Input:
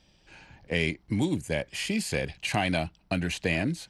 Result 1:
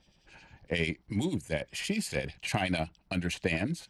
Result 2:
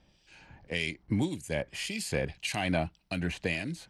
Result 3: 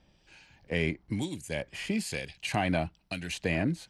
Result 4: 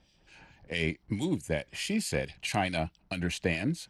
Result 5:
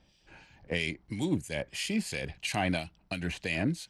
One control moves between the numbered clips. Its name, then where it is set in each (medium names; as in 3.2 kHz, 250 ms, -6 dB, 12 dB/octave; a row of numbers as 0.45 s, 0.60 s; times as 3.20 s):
harmonic tremolo, rate: 11 Hz, 1.8 Hz, 1.1 Hz, 4.6 Hz, 3 Hz